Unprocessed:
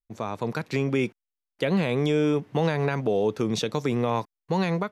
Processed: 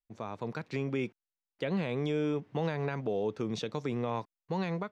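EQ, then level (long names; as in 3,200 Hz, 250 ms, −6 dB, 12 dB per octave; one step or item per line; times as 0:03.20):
high-frequency loss of the air 65 metres
−8.0 dB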